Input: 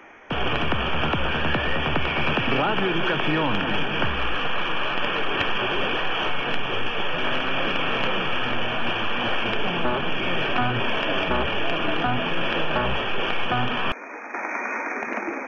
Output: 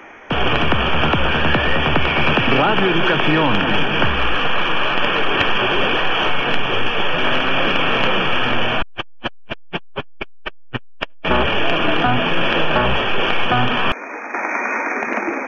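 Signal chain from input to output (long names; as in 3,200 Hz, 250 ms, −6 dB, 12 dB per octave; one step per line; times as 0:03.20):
0:08.82–0:11.25: saturating transformer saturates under 250 Hz
level +7 dB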